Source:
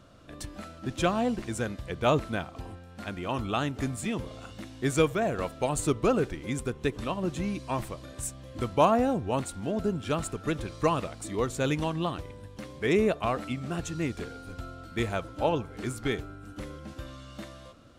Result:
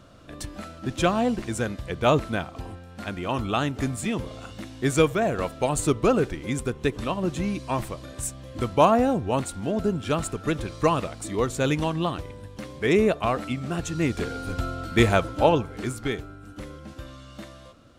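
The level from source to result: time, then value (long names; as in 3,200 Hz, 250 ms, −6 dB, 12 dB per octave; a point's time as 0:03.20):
0:13.84 +4 dB
0:14.46 +11 dB
0:15.12 +11 dB
0:16.14 +1 dB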